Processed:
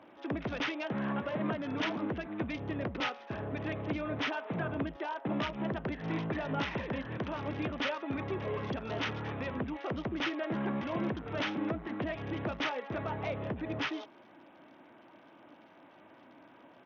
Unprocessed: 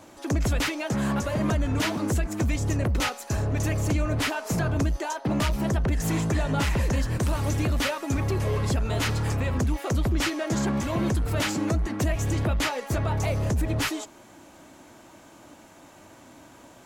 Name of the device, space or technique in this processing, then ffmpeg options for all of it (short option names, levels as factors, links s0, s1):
Bluetooth headset: -filter_complex "[0:a]asettb=1/sr,asplit=3[s0][s1][s2];[s0]atrim=end=1.294[s3];[s1]atrim=start=1.29:end=1.9,asetpts=PTS-STARTPTS,afade=t=in:d=0.004:c=qsin,afade=t=out:st=0.606:d=0.004:c=qsin,highpass=f=100:w=0.5412,highpass=f=100:w=1.3066[s4];[s2]atrim=start=1.896[s5];[s3][s4]acrossfade=d=0.004:c1=hsin:c2=qsin[s6];[s6][s5]acrossfade=d=0.004:c1=qsin:c2=hsin,highpass=180,aresample=8000,aresample=44100,volume=0.501" -ar 48000 -c:a sbc -b:a 64k